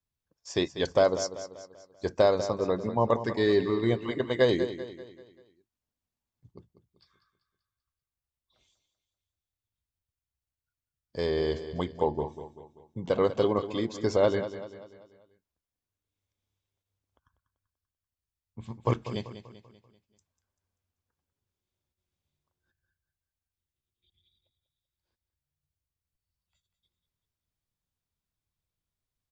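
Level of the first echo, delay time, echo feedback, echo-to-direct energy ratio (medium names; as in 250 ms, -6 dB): -12.0 dB, 194 ms, 46%, -11.0 dB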